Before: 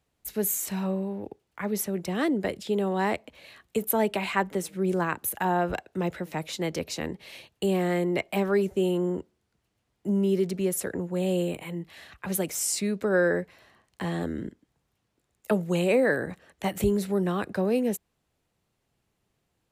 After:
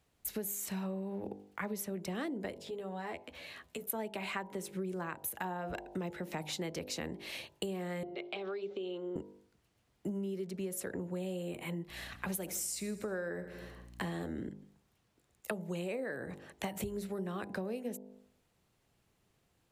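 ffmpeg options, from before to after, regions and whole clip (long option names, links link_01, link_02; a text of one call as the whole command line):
ffmpeg -i in.wav -filter_complex "[0:a]asettb=1/sr,asplit=3[link_01][link_02][link_03];[link_01]atrim=end=2.554[link_04];[link_02]atrim=start=2.55:end=3.9,asetpts=PTS-STARTPTS,afade=type=in:duration=0.004:curve=qsin,afade=type=out:start_time=1.346:duration=0.004:curve=qsin,equalizer=frequency=11000:width=0.65:gain=-2.5,acompressor=threshold=-48dB:ratio=2.5:attack=3.2:release=140:knee=1:detection=peak,asplit=2[link_05][link_06];[link_06]adelay=12,volume=-4.5dB[link_07];[link_05][link_07]amix=inputs=2:normalize=0,atrim=end_sample=59535[link_08];[link_03]atrim=start=3.896[link_09];[link_04][link_08]acrossfade=duration=0.004:curve1=hsin:curve2=qsin[link_10];[link_10][link_09]acrossfade=duration=0.004:curve1=qsin:curve2=hsin,asettb=1/sr,asplit=3[link_11][link_12][link_13];[link_11]atrim=end=8.034[link_14];[link_12]atrim=start=8.03:end=9.16,asetpts=PTS-STARTPTS,afade=type=in:duration=0.004:curve=qsin,afade=type=out:start_time=1.126:duration=0.004:curve=qsin,acompressor=threshold=-32dB:ratio=6:attack=3.2:release=140:knee=1:detection=peak,highpass=410,equalizer=frequency=430:width_type=q:width=4:gain=5,equalizer=frequency=640:width_type=q:width=4:gain=-5,equalizer=frequency=950:width_type=q:width=4:gain=-9,equalizer=frequency=1800:width_type=q:width=4:gain=-9,equalizer=frequency=3600:width_type=q:width=4:gain=6,lowpass=frequency=4500:width=0.5412,lowpass=frequency=4500:width=1.3066[link_15];[link_13]atrim=start=9.156[link_16];[link_14][link_15]acrossfade=duration=0.004:curve1=hsin:curve2=qsin[link_17];[link_17][link_16]acrossfade=duration=0.004:curve1=qsin:curve2=hsin,asettb=1/sr,asplit=3[link_18][link_19][link_20];[link_18]atrim=end=11.894[link_21];[link_19]atrim=start=11.89:end=14.27,asetpts=PTS-STARTPTS,afade=type=in:duration=0.004:curve=qsin,afade=type=out:start_time=2.376:duration=0.004:curve=qsin,highshelf=frequency=11000:gain=6.5,aecho=1:1:80|160|240|320|400|480:0.141|0.0833|0.0492|0.029|0.0171|0.0101,atrim=end_sample=104958,aeval=exprs='val(0)+0.002*(sin(2*PI*60*n/s)+sin(2*PI*2*60*n/s)/2+sin(2*PI*3*60*n/s)/3+sin(2*PI*4*60*n/s)/4+sin(2*PI*5*60*n/s)/5)':channel_layout=same[link_22];[link_20]atrim=start=14.266[link_23];[link_21][link_22]acrossfade=duration=0.004:curve1=hsin:curve2=qsin[link_24];[link_24][link_23]acrossfade=duration=0.004:curve1=qsin:curve2=hsin,bandreject=frequency=50.34:width_type=h:width=4,bandreject=frequency=100.68:width_type=h:width=4,bandreject=frequency=151.02:width_type=h:width=4,bandreject=frequency=201.36:width_type=h:width=4,bandreject=frequency=251.7:width_type=h:width=4,bandreject=frequency=302.04:width_type=h:width=4,bandreject=frequency=352.38:width_type=h:width=4,bandreject=frequency=402.72:width_type=h:width=4,bandreject=frequency=453.06:width_type=h:width=4,bandreject=frequency=503.4:width_type=h:width=4,bandreject=frequency=553.74:width_type=h:width=4,bandreject=frequency=604.08:width_type=h:width=4,bandreject=frequency=654.42:width_type=h:width=4,bandreject=frequency=704.76:width_type=h:width=4,bandreject=frequency=755.1:width_type=h:width=4,bandreject=frequency=805.44:width_type=h:width=4,bandreject=frequency=855.78:width_type=h:width=4,bandreject=frequency=906.12:width_type=h:width=4,bandreject=frequency=956.46:width_type=h:width=4,bandreject=frequency=1006.8:width_type=h:width=4,acompressor=threshold=-37dB:ratio=12,volume=2dB" out.wav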